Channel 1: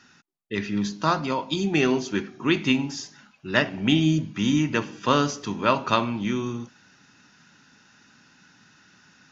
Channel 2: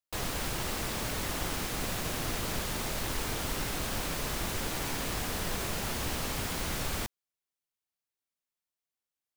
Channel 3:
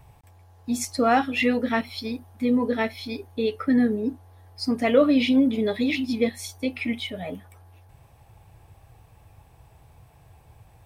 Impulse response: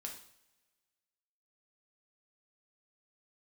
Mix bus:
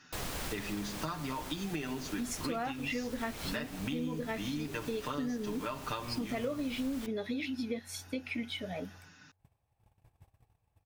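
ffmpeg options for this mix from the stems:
-filter_complex "[0:a]aecho=1:1:6.7:0.79,acompressor=threshold=0.0282:ratio=2,volume=0.596,asplit=2[s0][s1];[1:a]volume=0.708[s2];[2:a]agate=range=0.1:threshold=0.00398:ratio=16:detection=peak,adelay=1500,volume=0.531[s3];[s1]apad=whole_len=412863[s4];[s2][s4]sidechaincompress=threshold=0.0178:ratio=8:attack=23:release=1420[s5];[s0][s5][s3]amix=inputs=3:normalize=0,acompressor=threshold=0.0224:ratio=6"

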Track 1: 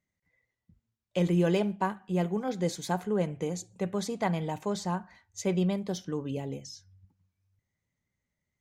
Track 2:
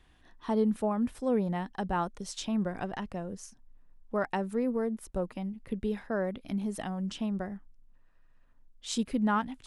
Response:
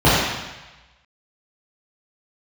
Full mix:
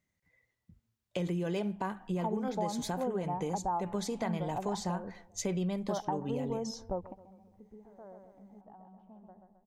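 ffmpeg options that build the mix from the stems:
-filter_complex "[0:a]alimiter=limit=0.0841:level=0:latency=1,volume=1.33,asplit=2[s0][s1];[1:a]lowpass=f=860:t=q:w=4.1,adelay=1750,volume=0.708,asplit=2[s2][s3];[s3]volume=0.0891[s4];[s1]apad=whole_len=503304[s5];[s2][s5]sidechaingate=range=0.0224:threshold=0.00112:ratio=16:detection=peak[s6];[s4]aecho=0:1:132|264|396|528|660|792|924:1|0.5|0.25|0.125|0.0625|0.0312|0.0156[s7];[s0][s6][s7]amix=inputs=3:normalize=0,acompressor=threshold=0.0251:ratio=3"

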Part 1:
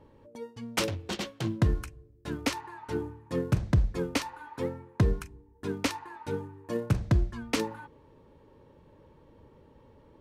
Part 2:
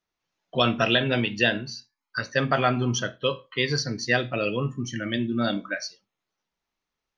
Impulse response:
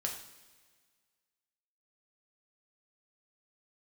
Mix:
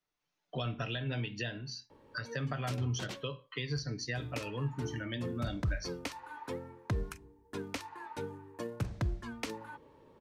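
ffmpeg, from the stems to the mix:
-filter_complex "[0:a]lowshelf=f=170:g=-10,adelay=1900,volume=1,asplit=3[s0][s1][s2];[s0]atrim=end=3.23,asetpts=PTS-STARTPTS,afade=t=out:st=3.226:d=0.004:c=hsin[s3];[s1]atrim=start=3.23:end=3.76,asetpts=PTS-STARTPTS,volume=0[s4];[s2]atrim=start=3.76,asetpts=PTS-STARTPTS,afade=t=in:d=0.004:c=hsin[s5];[s3][s4][s5]concat=n=3:v=0:a=1[s6];[1:a]aecho=1:1:6.8:0.38,volume=0.596[s7];[s6][s7]amix=inputs=2:normalize=0,acrossover=split=130[s8][s9];[s9]acompressor=threshold=0.0141:ratio=6[s10];[s8][s10]amix=inputs=2:normalize=0"

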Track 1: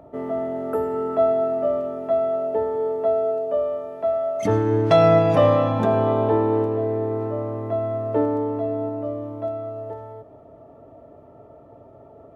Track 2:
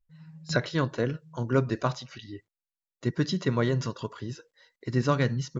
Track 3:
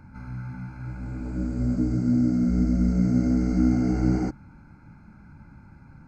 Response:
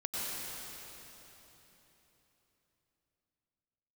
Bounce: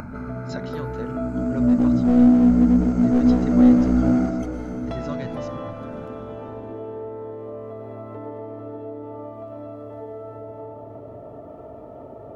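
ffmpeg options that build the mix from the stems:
-filter_complex "[0:a]acompressor=threshold=0.0316:ratio=4,volume=0.531,asplit=2[s0][s1];[s1]volume=0.473[s2];[1:a]volume=0.299,asplit=2[s3][s4];[2:a]equalizer=f=250:t=o:w=0.33:g=10,equalizer=f=1250:t=o:w=0.33:g=11,equalizer=f=5000:t=o:w=0.33:g=-5,aeval=exprs='clip(val(0),-1,0.188)':c=same,volume=0.668,asplit=2[s5][s6];[s6]volume=0.422[s7];[s4]apad=whole_len=544637[s8];[s0][s8]sidechaingate=range=0.0224:threshold=0.00158:ratio=16:detection=peak[s9];[3:a]atrim=start_sample=2205[s10];[s2][s7]amix=inputs=2:normalize=0[s11];[s11][s10]afir=irnorm=-1:irlink=0[s12];[s9][s3][s5][s12]amix=inputs=4:normalize=0,acompressor=mode=upward:threshold=0.0501:ratio=2.5"

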